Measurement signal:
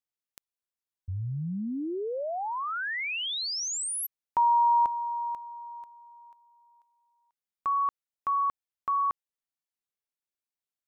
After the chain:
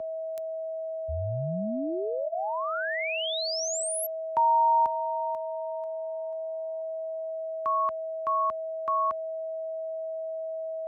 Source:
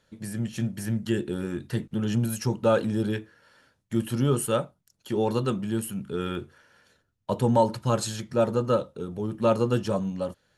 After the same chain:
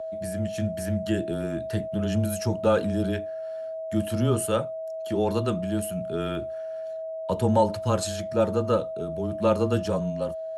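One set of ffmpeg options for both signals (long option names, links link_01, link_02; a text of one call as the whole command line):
ffmpeg -i in.wav -af "highpass=59,aeval=exprs='val(0)+0.0282*sin(2*PI*660*n/s)':channel_layout=same,afreqshift=-16" out.wav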